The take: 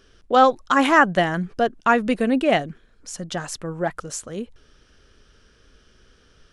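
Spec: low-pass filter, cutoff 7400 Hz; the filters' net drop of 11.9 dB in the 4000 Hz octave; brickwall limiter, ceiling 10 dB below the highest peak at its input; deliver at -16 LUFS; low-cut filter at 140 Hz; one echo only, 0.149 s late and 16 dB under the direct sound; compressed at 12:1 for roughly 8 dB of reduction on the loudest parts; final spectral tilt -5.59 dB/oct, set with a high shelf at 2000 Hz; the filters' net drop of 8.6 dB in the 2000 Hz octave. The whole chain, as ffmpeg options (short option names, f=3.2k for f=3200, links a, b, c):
-af "highpass=140,lowpass=7.4k,highshelf=f=2k:g=-5,equalizer=f=2k:t=o:g=-7,equalizer=f=4k:t=o:g=-8.5,acompressor=threshold=-20dB:ratio=12,alimiter=limit=-22.5dB:level=0:latency=1,aecho=1:1:149:0.158,volume=16.5dB"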